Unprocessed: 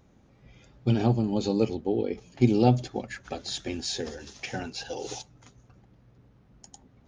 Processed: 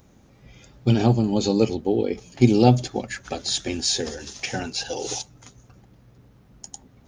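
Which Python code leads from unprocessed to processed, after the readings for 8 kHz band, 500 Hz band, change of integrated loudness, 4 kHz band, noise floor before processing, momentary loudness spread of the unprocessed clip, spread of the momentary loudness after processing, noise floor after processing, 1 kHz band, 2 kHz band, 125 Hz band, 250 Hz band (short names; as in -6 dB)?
+11.0 dB, +5.0 dB, +5.5 dB, +8.5 dB, -60 dBFS, 14 LU, 14 LU, -55 dBFS, +5.0 dB, +6.0 dB, +5.0 dB, +5.0 dB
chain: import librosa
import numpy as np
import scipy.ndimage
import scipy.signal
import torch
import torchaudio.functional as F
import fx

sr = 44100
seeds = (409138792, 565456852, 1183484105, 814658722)

y = fx.high_shelf(x, sr, hz=6500.0, db=12.0)
y = y * librosa.db_to_amplitude(5.0)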